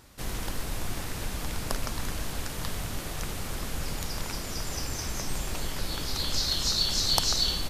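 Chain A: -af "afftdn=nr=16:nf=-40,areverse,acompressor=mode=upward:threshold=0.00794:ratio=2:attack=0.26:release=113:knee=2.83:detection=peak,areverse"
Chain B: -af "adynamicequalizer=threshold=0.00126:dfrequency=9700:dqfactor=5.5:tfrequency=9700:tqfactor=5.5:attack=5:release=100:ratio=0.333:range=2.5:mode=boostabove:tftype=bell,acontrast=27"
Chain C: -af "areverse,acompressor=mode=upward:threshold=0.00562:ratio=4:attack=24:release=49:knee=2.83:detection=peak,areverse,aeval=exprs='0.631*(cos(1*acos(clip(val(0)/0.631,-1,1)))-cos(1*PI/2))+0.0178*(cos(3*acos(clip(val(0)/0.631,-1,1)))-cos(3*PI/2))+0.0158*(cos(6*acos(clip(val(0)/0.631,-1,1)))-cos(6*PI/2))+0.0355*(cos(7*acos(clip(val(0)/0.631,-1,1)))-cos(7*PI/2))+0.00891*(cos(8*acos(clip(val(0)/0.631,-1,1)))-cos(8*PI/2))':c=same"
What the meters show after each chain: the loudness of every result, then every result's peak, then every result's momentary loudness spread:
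-31.5 LUFS, -25.5 LUFS, -35.0 LUFS; -4.5 dBFS, -2.0 dBFS, -4.5 dBFS; 14 LU, 11 LU, 12 LU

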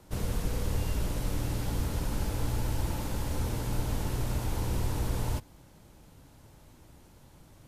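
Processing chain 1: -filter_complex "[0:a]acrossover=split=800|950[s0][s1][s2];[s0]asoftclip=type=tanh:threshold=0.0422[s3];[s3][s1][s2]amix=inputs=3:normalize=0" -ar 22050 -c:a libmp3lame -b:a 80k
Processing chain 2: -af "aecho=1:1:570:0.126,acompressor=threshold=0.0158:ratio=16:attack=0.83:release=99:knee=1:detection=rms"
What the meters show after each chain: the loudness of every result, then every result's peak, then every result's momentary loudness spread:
-36.5 LUFS, -45.0 LUFS; -24.0 dBFS, -32.5 dBFS; 1 LU, 12 LU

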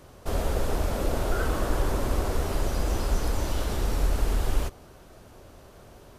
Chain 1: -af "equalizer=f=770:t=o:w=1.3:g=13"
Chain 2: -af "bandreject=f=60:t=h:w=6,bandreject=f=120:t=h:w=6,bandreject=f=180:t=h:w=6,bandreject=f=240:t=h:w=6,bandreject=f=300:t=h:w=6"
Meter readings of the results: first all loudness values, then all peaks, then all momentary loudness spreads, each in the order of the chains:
-25.0 LUFS, -29.5 LUFS; -10.0 dBFS, -12.5 dBFS; 21 LU, 3 LU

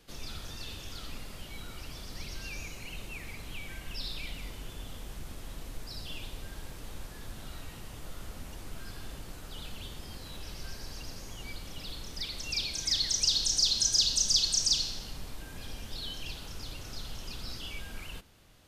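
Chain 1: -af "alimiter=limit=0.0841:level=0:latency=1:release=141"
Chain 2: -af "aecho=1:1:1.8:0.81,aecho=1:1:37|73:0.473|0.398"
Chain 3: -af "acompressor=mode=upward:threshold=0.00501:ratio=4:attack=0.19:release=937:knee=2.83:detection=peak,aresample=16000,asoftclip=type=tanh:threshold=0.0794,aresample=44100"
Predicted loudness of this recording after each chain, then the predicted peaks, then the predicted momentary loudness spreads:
-37.0 LUFS, -28.5 LUFS, -34.5 LUFS; -21.5 dBFS, -9.0 dBFS, -18.5 dBFS; 16 LU, 20 LU, 19 LU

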